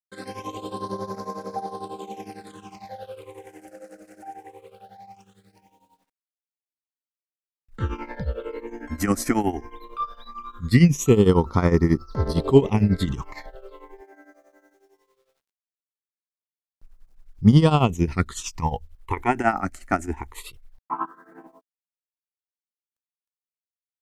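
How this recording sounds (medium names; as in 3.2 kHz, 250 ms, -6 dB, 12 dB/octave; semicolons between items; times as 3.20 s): phasing stages 8, 0.19 Hz, lowest notch 130–2900 Hz; a quantiser's noise floor 12-bit, dither none; tremolo triangle 11 Hz, depth 85%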